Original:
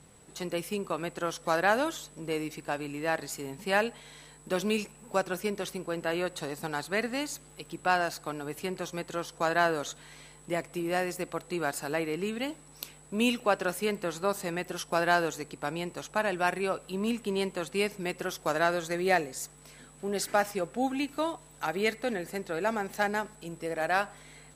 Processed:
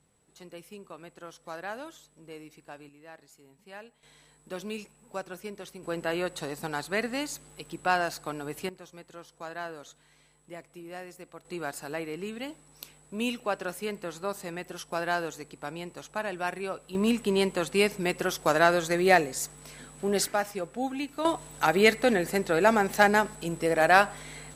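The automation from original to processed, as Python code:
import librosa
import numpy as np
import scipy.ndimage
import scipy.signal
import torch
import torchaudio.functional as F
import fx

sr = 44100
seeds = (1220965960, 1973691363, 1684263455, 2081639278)

y = fx.gain(x, sr, db=fx.steps((0.0, -12.5), (2.89, -19.0), (4.03, -8.0), (5.83, 0.5), (8.69, -12.0), (11.45, -4.0), (16.95, 5.0), (20.28, -2.0), (21.25, 8.0)))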